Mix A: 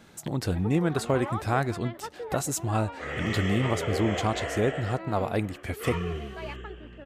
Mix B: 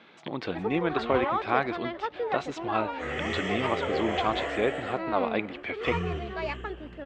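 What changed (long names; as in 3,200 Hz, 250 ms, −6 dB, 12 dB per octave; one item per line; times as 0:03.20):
speech: add loudspeaker in its box 270–3,900 Hz, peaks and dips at 1,100 Hz +4 dB, 2,300 Hz +7 dB, 3,400 Hz +5 dB
first sound +6.5 dB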